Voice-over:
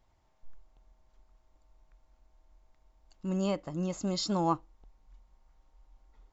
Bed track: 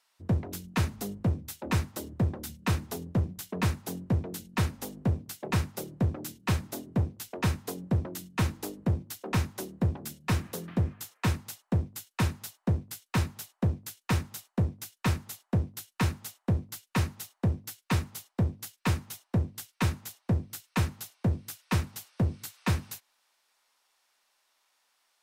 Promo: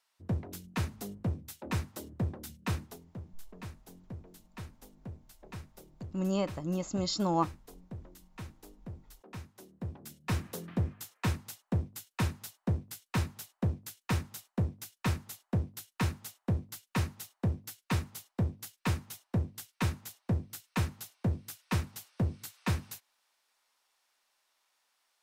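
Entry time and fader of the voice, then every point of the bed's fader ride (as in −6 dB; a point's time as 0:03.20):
2.90 s, 0.0 dB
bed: 0:02.82 −5.5 dB
0:03.03 −17 dB
0:09.53 −17 dB
0:10.38 −3.5 dB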